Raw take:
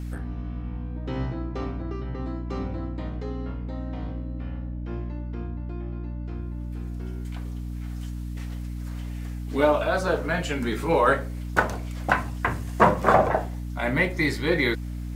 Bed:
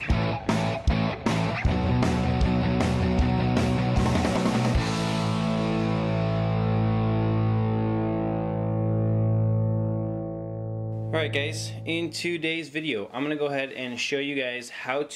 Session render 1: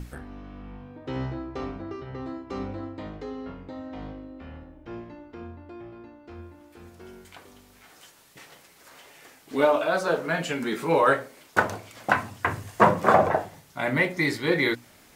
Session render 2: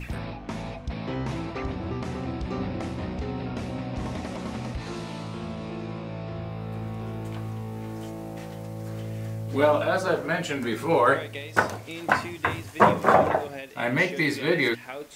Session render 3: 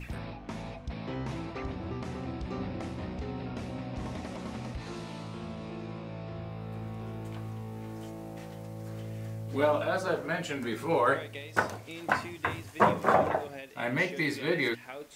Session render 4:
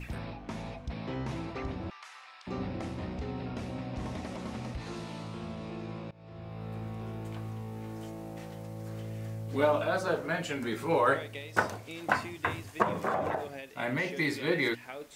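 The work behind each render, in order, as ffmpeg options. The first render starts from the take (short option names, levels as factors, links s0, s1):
-af "bandreject=f=60:t=h:w=6,bandreject=f=120:t=h:w=6,bandreject=f=180:t=h:w=6,bandreject=f=240:t=h:w=6,bandreject=f=300:t=h:w=6"
-filter_complex "[1:a]volume=0.316[s0];[0:a][s0]amix=inputs=2:normalize=0"
-af "volume=0.531"
-filter_complex "[0:a]asettb=1/sr,asplit=3[s0][s1][s2];[s0]atrim=end=1.904[s3];[s1]atrim=start=1.9:end=2.47,asetpts=PTS-STARTPTS,afade=t=in:d=0.004:c=qsin,afade=t=out:st=0.566:d=0.004:c=qsin,highpass=f=1100:w=0.5412,highpass=f=1100:w=1.3066[s4];[s2]atrim=start=2.466[s5];[s3][s4]acrossfade=d=0.004:c1=hsin:c2=qsin[s6];[s6][s5]acrossfade=d=0.004:c1=qsin:c2=hsin,asettb=1/sr,asplit=3[s7][s8][s9];[s7]atrim=end=12.824[s10];[s8]atrim=start=12.82:end=14.09,asetpts=PTS-STARTPTS,afade=t=in:d=0.004:c=qsin,afade=t=out:st=1.266:d=0.004:c=qsin,acompressor=threshold=0.0501:ratio=6:attack=3.2:release=140:knee=1:detection=peak[s11];[s9]atrim=start=14.086[s12];[s10][s11]acrossfade=d=0.004:c1=hsin:c2=qsin[s13];[s13][s12]acrossfade=d=0.004:c1=qsin:c2=hsin,asplit=2[s14][s15];[s14]atrim=end=6.11,asetpts=PTS-STARTPTS,afade=t=out:st=6.106:d=0.004:c=hsin:silence=0.0749894[s16];[s15]atrim=start=6.11,asetpts=PTS-STARTPTS,afade=t=in:d=0.54:silence=0.0749894[s17];[s16][s17]concat=n=2:v=0:a=1"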